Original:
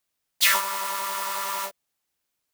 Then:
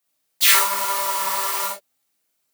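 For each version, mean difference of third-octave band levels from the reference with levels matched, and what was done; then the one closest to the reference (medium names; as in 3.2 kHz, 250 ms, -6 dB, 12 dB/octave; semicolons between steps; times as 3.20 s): 2.5 dB: high-pass 110 Hz; treble shelf 11 kHz +6 dB; chorus 1 Hz, delay 17 ms, depth 6.1 ms; gated-style reverb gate 80 ms rising, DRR -1 dB; trim +4 dB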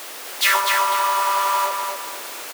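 4.0 dB: jump at every zero crossing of -27.5 dBFS; high-pass 330 Hz 24 dB/octave; treble shelf 2.9 kHz -8.5 dB; feedback delay 248 ms, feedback 34%, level -4.5 dB; trim +5.5 dB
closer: first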